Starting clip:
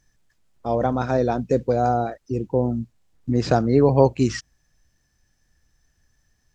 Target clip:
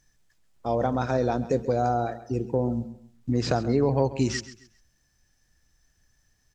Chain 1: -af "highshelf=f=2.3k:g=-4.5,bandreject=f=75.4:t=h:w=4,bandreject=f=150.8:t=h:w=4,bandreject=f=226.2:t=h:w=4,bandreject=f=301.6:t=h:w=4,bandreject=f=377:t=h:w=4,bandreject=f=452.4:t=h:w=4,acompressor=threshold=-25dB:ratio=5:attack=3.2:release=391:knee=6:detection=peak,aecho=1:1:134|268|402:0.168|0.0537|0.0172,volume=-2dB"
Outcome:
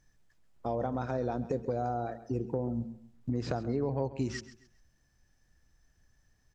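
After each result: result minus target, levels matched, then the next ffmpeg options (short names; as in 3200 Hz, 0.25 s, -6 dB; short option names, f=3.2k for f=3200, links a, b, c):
compressor: peak gain reduction +9 dB; 4000 Hz band -4.0 dB
-af "highshelf=f=2.3k:g=-4.5,bandreject=f=75.4:t=h:w=4,bandreject=f=150.8:t=h:w=4,bandreject=f=226.2:t=h:w=4,bandreject=f=301.6:t=h:w=4,bandreject=f=377:t=h:w=4,bandreject=f=452.4:t=h:w=4,acompressor=threshold=-13.5dB:ratio=5:attack=3.2:release=391:knee=6:detection=peak,aecho=1:1:134|268|402:0.168|0.0537|0.0172,volume=-2dB"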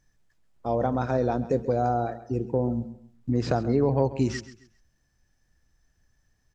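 4000 Hz band -6.0 dB
-af "highshelf=f=2.3k:g=3.5,bandreject=f=75.4:t=h:w=4,bandreject=f=150.8:t=h:w=4,bandreject=f=226.2:t=h:w=4,bandreject=f=301.6:t=h:w=4,bandreject=f=377:t=h:w=4,bandreject=f=452.4:t=h:w=4,acompressor=threshold=-13.5dB:ratio=5:attack=3.2:release=391:knee=6:detection=peak,aecho=1:1:134|268|402:0.168|0.0537|0.0172,volume=-2dB"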